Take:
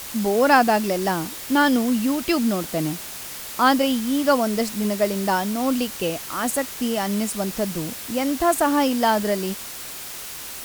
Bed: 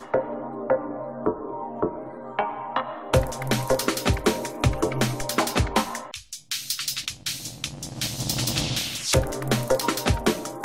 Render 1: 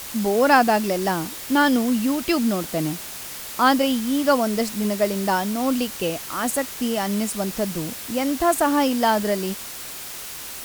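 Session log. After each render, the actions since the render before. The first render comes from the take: nothing audible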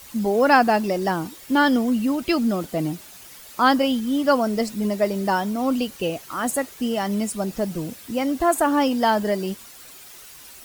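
denoiser 11 dB, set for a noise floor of -35 dBFS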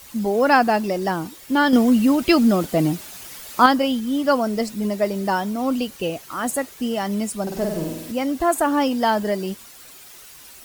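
1.73–3.66 gain +5.5 dB; 7.42–8.12 flutter echo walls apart 8.4 m, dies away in 0.92 s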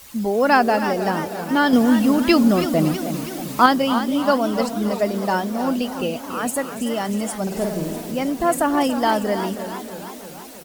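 feedback echo 0.282 s, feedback 47%, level -14.5 dB; warbling echo 0.32 s, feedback 62%, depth 156 cents, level -11 dB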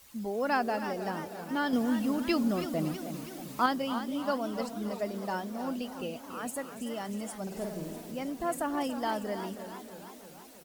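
gain -13 dB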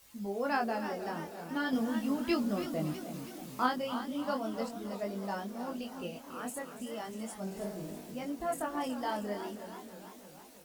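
chorus 0.38 Hz, delay 20 ms, depth 4.2 ms

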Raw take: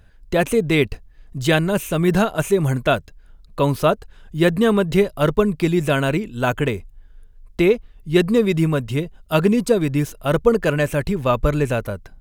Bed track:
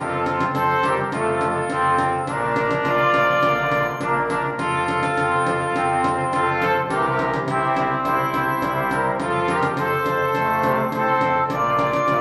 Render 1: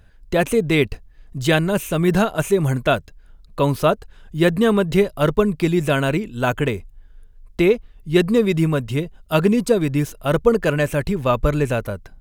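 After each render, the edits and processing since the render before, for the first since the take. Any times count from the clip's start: nothing audible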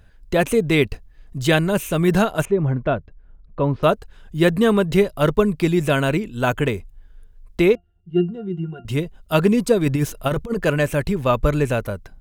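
2.45–3.83 tape spacing loss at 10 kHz 44 dB; 7.75–8.85 octave resonator F, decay 0.14 s; 9.86–10.6 negative-ratio compressor -19 dBFS, ratio -0.5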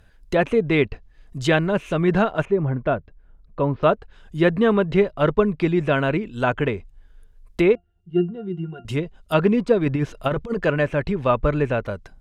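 low shelf 230 Hz -4 dB; treble ducked by the level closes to 2600 Hz, closed at -18.5 dBFS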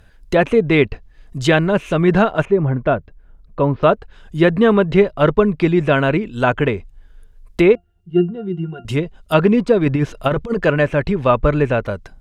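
gain +5 dB; limiter -2 dBFS, peak gain reduction 2.5 dB

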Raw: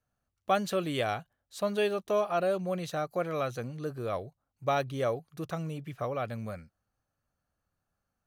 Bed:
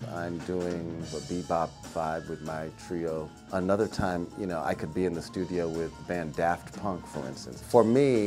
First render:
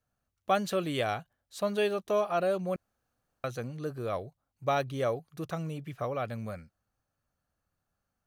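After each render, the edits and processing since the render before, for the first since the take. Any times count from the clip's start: 2.76–3.44 room tone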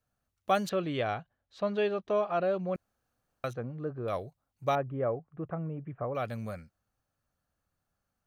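0.69–2.75 air absorption 210 m; 3.53–4.08 LPF 1400 Hz; 4.75–6.15 Gaussian blur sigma 5.2 samples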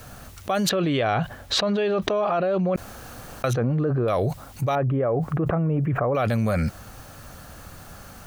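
fast leveller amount 100%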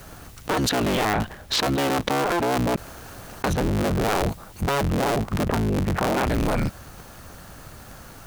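cycle switcher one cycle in 3, inverted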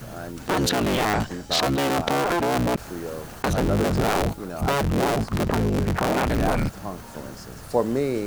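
add bed -1.5 dB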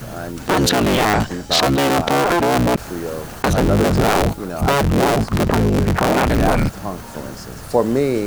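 gain +6.5 dB; limiter -3 dBFS, peak gain reduction 2.5 dB

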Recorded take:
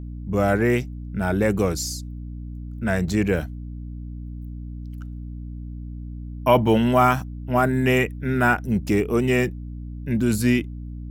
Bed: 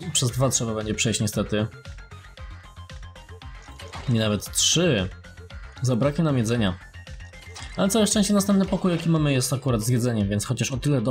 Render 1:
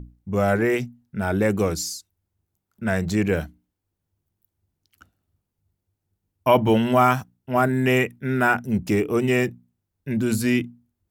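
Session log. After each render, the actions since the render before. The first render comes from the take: notches 60/120/180/240/300 Hz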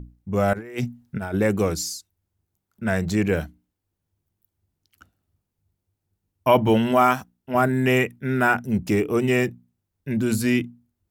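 0.53–1.34 negative-ratio compressor -28 dBFS, ratio -0.5; 6.91–7.55 bell 120 Hz -10 dB 0.59 oct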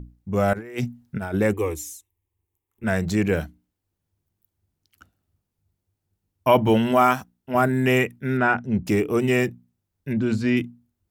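1.53–2.84 fixed phaser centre 960 Hz, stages 8; 8.37–8.86 air absorption 150 m; 10.13–10.57 air absorption 150 m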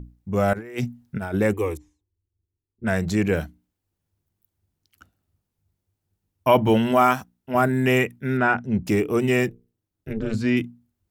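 1.77–3.34 low-pass opened by the level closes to 300 Hz, open at -21.5 dBFS; 9.49–10.34 AM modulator 220 Hz, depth 95%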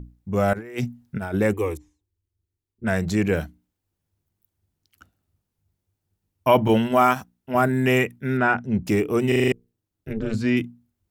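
6.68–7.16 expander -20 dBFS; 9.28 stutter in place 0.04 s, 6 plays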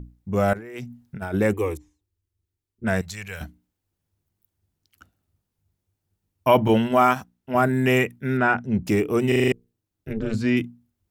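0.55–1.22 compressor, threshold -31 dBFS; 3.01–3.41 passive tone stack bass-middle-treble 10-0-10; 6.69–7.66 high shelf 8000 Hz -4 dB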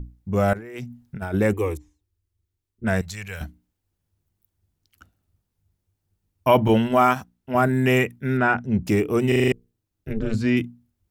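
low shelf 69 Hz +8 dB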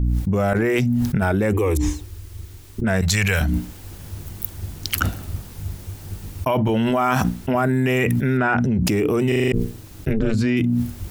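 limiter -13.5 dBFS, peak gain reduction 9 dB; fast leveller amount 100%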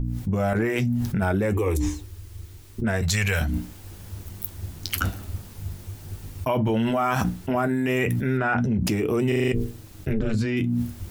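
flange 0.32 Hz, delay 7.7 ms, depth 3.7 ms, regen -54%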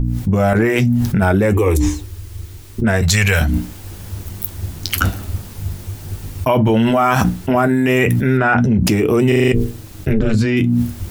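gain +9 dB; limiter -1 dBFS, peak gain reduction 2.5 dB

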